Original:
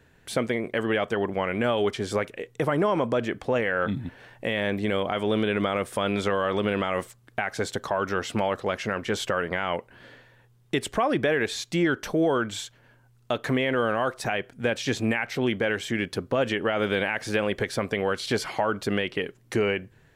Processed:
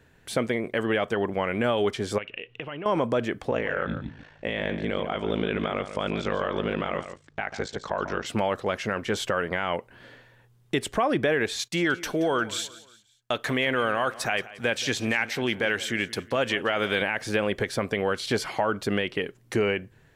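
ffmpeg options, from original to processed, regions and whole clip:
ffmpeg -i in.wav -filter_complex "[0:a]asettb=1/sr,asplit=3[link_01][link_02][link_03];[link_01]atrim=end=2.184[link_04];[link_02]atrim=start=2.18:end=2.86,asetpts=PTS-STARTPTS,afade=type=in:duration=0.004:curve=qsin,afade=type=out:start_time=0.676:duration=0.004:curve=qsin,acompressor=threshold=-45dB:ratio=2:attack=3.2:release=140:knee=1:detection=peak,lowpass=frequency=2800:width_type=q:width=11[link_05];[link_03]atrim=start=2.856[link_06];[link_04][link_05]acrossfade=duration=0.004:curve1=hsin:curve2=qsin[link_07];[link_07][link_06]acrossfade=duration=0.004:curve1=qsin:curve2=hsin,asettb=1/sr,asplit=3[link_08][link_09][link_10];[link_08]atrim=end=3.504[link_11];[link_09]atrim=start=3.5:end=8.26,asetpts=PTS-STARTPTS,afade=type=in:duration=0.004:curve=qsin,afade=type=out:start_time=4.756:duration=0.004:curve=qsin,lowpass=frequency=6900:width=0.5412,lowpass=frequency=6900:width=1.3066,aeval=exprs='val(0)*sin(2*PI*27*n/s)':channel_layout=same,aecho=1:1:143:0.299,atrim=end_sample=209916[link_12];[link_10]atrim=start=8.256[link_13];[link_11][link_12]acrossfade=duration=0.004:curve1=hsin:curve2=qsin[link_14];[link_14][link_13]acrossfade=duration=0.004:curve1=qsin:curve2=hsin,asettb=1/sr,asplit=3[link_15][link_16][link_17];[link_15]atrim=end=11.594[link_18];[link_16]atrim=start=11.59:end=17.02,asetpts=PTS-STARTPTS,afade=type=in:duration=0.004:curve=qsin,afade=type=out:start_time=5.426:duration=0.004:curve=qsin,agate=range=-19dB:threshold=-48dB:ratio=16:release=100:detection=peak,tiltshelf=frequency=860:gain=-4,aecho=1:1:176|352|528:0.126|0.0529|0.0222,atrim=end_sample=239463[link_19];[link_17]atrim=start=17.016[link_20];[link_18][link_19]acrossfade=duration=0.004:curve1=hsin:curve2=qsin[link_21];[link_21][link_20]acrossfade=duration=0.004:curve1=qsin:curve2=hsin" out.wav

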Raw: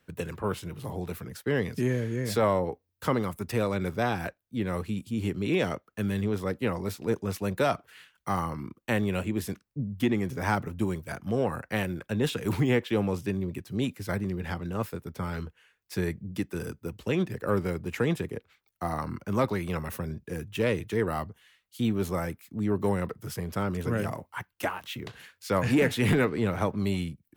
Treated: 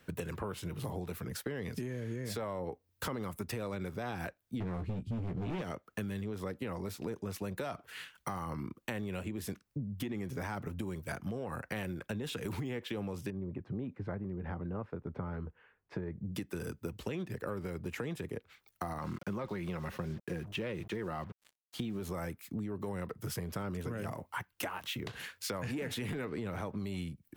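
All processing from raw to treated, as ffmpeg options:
ffmpeg -i in.wav -filter_complex "[0:a]asettb=1/sr,asplit=3[link_01][link_02][link_03];[link_01]atrim=end=4.604[link_04];[link_02]atrim=start=4.6:end=5.62,asetpts=PTS-STARTPTS,afade=type=in:duration=0.004:curve=qsin,afade=type=out:start_time=1.016:duration=0.004:curve=qsin,aemphasis=mode=reproduction:type=riaa,volume=23.5dB,asoftclip=hard,volume=-23.5dB,asplit=2[link_05][link_06];[link_06]adelay=17,volume=-7.5dB[link_07];[link_05][link_07]amix=inputs=2:normalize=0,atrim=end_sample=44982[link_08];[link_03]atrim=start=5.616[link_09];[link_04][link_08]acrossfade=duration=0.004:curve1=hsin:curve2=qsin[link_10];[link_10][link_09]acrossfade=duration=0.004:curve1=qsin:curve2=hsin,asettb=1/sr,asplit=3[link_11][link_12][link_13];[link_11]atrim=end=13.304[link_14];[link_12]atrim=start=13.3:end=16.24,asetpts=PTS-STARTPTS,afade=type=in:duration=0.004:curve=qsin,afade=type=out:start_time=2.936:duration=0.004:curve=qsin,lowpass=1200,acompressor=threshold=-37dB:ratio=1.5:attack=3.2:release=140:knee=1:detection=peak[link_15];[link_13]atrim=start=16.236[link_16];[link_14][link_15]acrossfade=duration=0.004:curve1=hsin:curve2=qsin[link_17];[link_17][link_16]acrossfade=duration=0.004:curve1=qsin:curve2=hsin,asettb=1/sr,asplit=3[link_18][link_19][link_20];[link_18]atrim=end=18.994[link_21];[link_19]atrim=start=18.99:end=22,asetpts=PTS-STARTPTS,afade=type=in:duration=0.004:curve=qsin,afade=type=out:start_time=3.006:duration=0.004:curve=qsin,aecho=1:1:5.6:0.3,atrim=end_sample=132741,acrusher=bits=7:mix=0:aa=0.5,acrossover=split=4800[link_22][link_23];[link_23]acompressor=threshold=-58dB:ratio=4:attack=1:release=60[link_24];[link_22][link_24]amix=inputs=2:normalize=0[link_25];[link_20]atrim=start=21.996[link_26];[link_21][link_25]acrossfade=duration=0.004:curve1=hsin:curve2=qsin[link_27];[link_27][link_26]acrossfade=duration=0.004:curve1=qsin:curve2=hsin,alimiter=limit=-23dB:level=0:latency=1:release=76,acompressor=threshold=-42dB:ratio=6,volume=6dB" out.wav

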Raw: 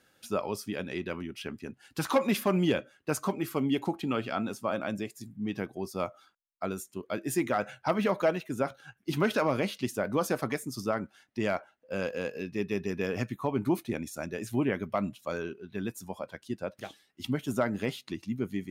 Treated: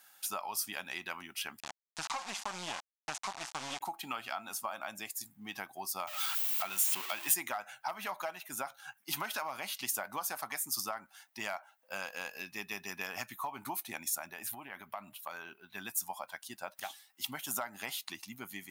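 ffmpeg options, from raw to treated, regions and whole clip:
ffmpeg -i in.wav -filter_complex "[0:a]asettb=1/sr,asplit=3[link_01][link_02][link_03];[link_01]atrim=end=1.604[link_04];[link_02]atrim=start=1.6:end=3.81,asetpts=PTS-STARTPTS,afade=type=in:duration=0.004:curve=qsin,afade=type=out:start_time=2.206:duration=0.004:curve=qsin,equalizer=frequency=80:width=0.43:gain=4.5,acrusher=bits=3:dc=4:mix=0:aa=0.000001,lowpass=frequency=7100:width=0.5412,lowpass=frequency=7100:width=1.3066[link_05];[link_03]atrim=start=3.806[link_06];[link_04][link_05]acrossfade=duration=0.004:curve1=hsin:curve2=qsin[link_07];[link_07][link_06]acrossfade=duration=0.004:curve1=qsin:curve2=hsin,asettb=1/sr,asplit=3[link_08][link_09][link_10];[link_08]atrim=end=6.074[link_11];[link_09]atrim=start=6.07:end=7.34,asetpts=PTS-STARTPTS,afade=type=in:duration=0.004:curve=qsin,afade=type=out:start_time=1.266:duration=0.004:curve=qsin,aeval=exprs='val(0)+0.5*0.0112*sgn(val(0))':channel_layout=same,equalizer=frequency=2800:width_type=o:width=1.1:gain=10,aeval=exprs='val(0)+0.000794*(sin(2*PI*50*n/s)+sin(2*PI*2*50*n/s)/2+sin(2*PI*3*50*n/s)/3+sin(2*PI*4*50*n/s)/4+sin(2*PI*5*50*n/s)/5)':channel_layout=same[link_12];[link_10]atrim=start=7.336[link_13];[link_11][link_12]acrossfade=duration=0.004:curve1=hsin:curve2=qsin[link_14];[link_14][link_13]acrossfade=duration=0.004:curve1=qsin:curve2=hsin,asettb=1/sr,asplit=3[link_15][link_16][link_17];[link_15]atrim=end=14.164[link_18];[link_16]atrim=start=14.16:end=15.7,asetpts=PTS-STARTPTS,afade=type=in:duration=0.004:curve=qsin,afade=type=out:start_time=1.536:duration=0.004:curve=qsin,equalizer=frequency=6500:width=1.3:gain=-9,acompressor=threshold=-34dB:ratio=10:attack=3.2:release=140:knee=1:detection=peak[link_19];[link_17]atrim=start=15.696[link_20];[link_18][link_19]acrossfade=duration=0.004:curve1=hsin:curve2=qsin[link_21];[link_21][link_20]acrossfade=duration=0.004:curve1=qsin:curve2=hsin,lowshelf=frequency=610:width_type=q:width=3:gain=-9,acompressor=threshold=-35dB:ratio=6,aemphasis=mode=production:type=bsi" out.wav

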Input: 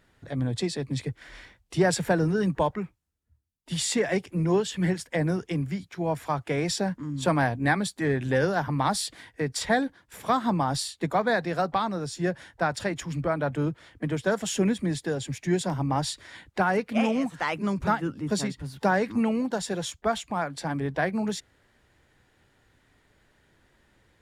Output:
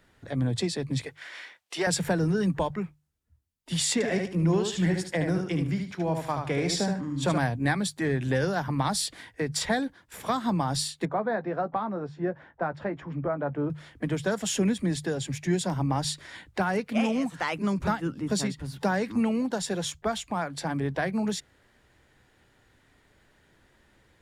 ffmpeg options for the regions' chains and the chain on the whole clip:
ffmpeg -i in.wav -filter_complex "[0:a]asettb=1/sr,asplit=3[link_01][link_02][link_03];[link_01]atrim=end=1.064[link_04];[link_02]atrim=start=1.06:end=1.87,asetpts=PTS-STARTPTS,afade=type=in:duration=0.004:curve=qsin,afade=type=out:start_time=0.806:duration=0.004:curve=qsin,highpass=500,equalizer=frequency=2500:width_type=o:width=2.2:gain=4.5[link_05];[link_03]atrim=start=1.866[link_06];[link_04][link_05]acrossfade=duration=0.004:curve1=hsin:curve2=qsin[link_07];[link_07][link_06]acrossfade=duration=0.004:curve1=qsin:curve2=hsin,asettb=1/sr,asplit=3[link_08][link_09][link_10];[link_08]atrim=end=3.934[link_11];[link_09]atrim=start=3.93:end=7.38,asetpts=PTS-STARTPTS,afade=type=in:duration=0.004:curve=qsin,afade=type=out:start_time=3.446:duration=0.004:curve=qsin,highshelf=frequency=11000:gain=-8,aecho=1:1:74|148|222:0.531|0.111|0.0234,atrim=end_sample=152145[link_12];[link_10]atrim=start=7.376[link_13];[link_11][link_12]acrossfade=duration=0.004:curve1=hsin:curve2=qsin[link_14];[link_14][link_13]acrossfade=duration=0.004:curve1=qsin:curve2=hsin,asettb=1/sr,asplit=3[link_15][link_16][link_17];[link_15]atrim=end=11.054[link_18];[link_16]atrim=start=11.05:end=13.7,asetpts=PTS-STARTPTS,afade=type=in:duration=0.004:curve=qsin,afade=type=out:start_time=2.646:duration=0.004:curve=qsin,lowpass=1300,lowshelf=frequency=120:gain=-11.5,asplit=2[link_19][link_20];[link_20]adelay=14,volume=-11.5dB[link_21];[link_19][link_21]amix=inputs=2:normalize=0,atrim=end_sample=116865[link_22];[link_17]atrim=start=13.696[link_23];[link_18][link_22]acrossfade=duration=0.004:curve1=hsin:curve2=qsin[link_24];[link_24][link_23]acrossfade=duration=0.004:curve1=qsin:curve2=hsin,bandreject=frequency=50:width_type=h:width=6,bandreject=frequency=100:width_type=h:width=6,bandreject=frequency=150:width_type=h:width=6,acrossover=split=200|3000[link_25][link_26][link_27];[link_26]acompressor=threshold=-30dB:ratio=2[link_28];[link_25][link_28][link_27]amix=inputs=3:normalize=0,volume=1.5dB" out.wav

